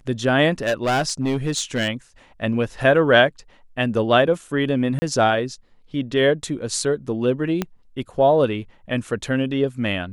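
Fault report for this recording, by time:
0:00.63–0:01.89: clipping −16.5 dBFS
0:04.99–0:05.02: drop-out 30 ms
0:07.62: click −9 dBFS

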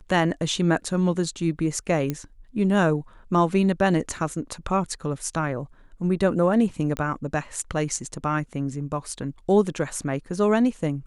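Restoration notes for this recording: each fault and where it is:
0:02.10: click −13 dBFS
0:06.97: click −15 dBFS

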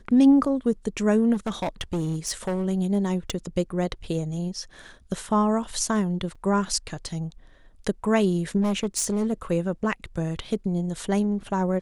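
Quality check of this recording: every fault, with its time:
0:01.33–0:02.66: clipping −22.5 dBFS
0:03.30: click −15 dBFS
0:06.35–0:06.36: drop-out 5 ms
0:08.61–0:09.33: clipping −20 dBFS

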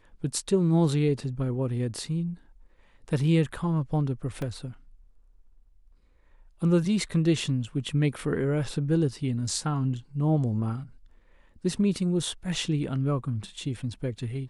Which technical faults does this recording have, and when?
0:04.42: drop-out 3 ms

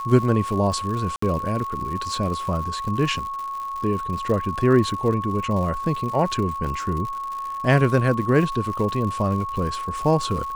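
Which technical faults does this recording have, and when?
surface crackle 130 per second −30 dBFS
whistle 1,100 Hz −27 dBFS
0:01.16–0:01.22: drop-out 64 ms

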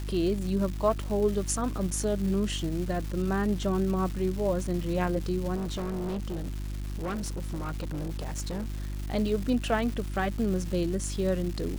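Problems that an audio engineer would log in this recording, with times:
surface crackle 530 per second −35 dBFS
mains hum 50 Hz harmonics 7 −34 dBFS
0:05.55–0:08.96: clipping −29 dBFS

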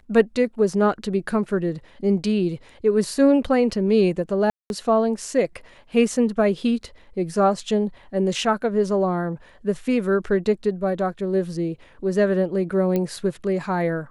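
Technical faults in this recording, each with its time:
0:04.50–0:04.70: drop-out 201 ms
0:12.96: click −12 dBFS

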